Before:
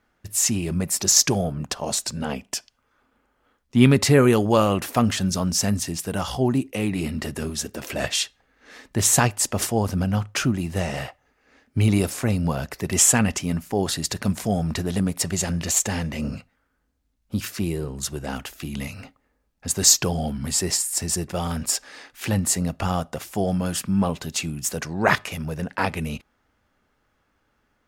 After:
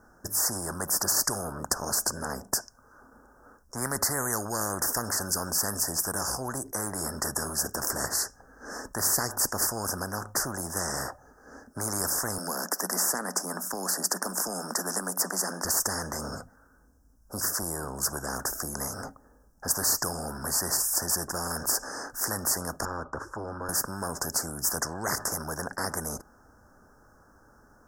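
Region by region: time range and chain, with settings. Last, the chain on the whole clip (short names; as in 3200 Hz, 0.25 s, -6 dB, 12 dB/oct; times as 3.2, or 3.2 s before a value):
12.38–15.65 rippled Chebyshev high-pass 180 Hz, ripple 3 dB + three-band squash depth 40%
22.85–23.69 LPF 2100 Hz + fixed phaser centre 710 Hz, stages 6
whole clip: Chebyshev band-stop 1600–5300 Hz, order 4; spectral compressor 4:1; gain -4.5 dB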